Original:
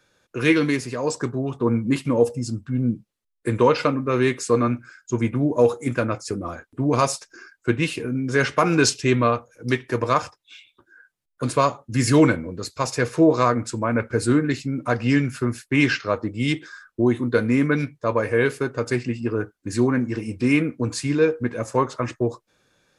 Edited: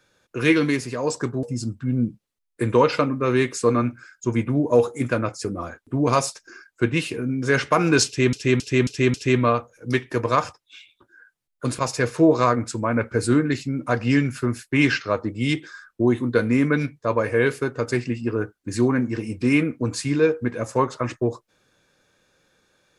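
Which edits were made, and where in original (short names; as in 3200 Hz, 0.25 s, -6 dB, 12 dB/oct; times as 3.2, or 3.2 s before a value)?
1.43–2.29 cut
8.92–9.19 loop, 5 plays
11.57–12.78 cut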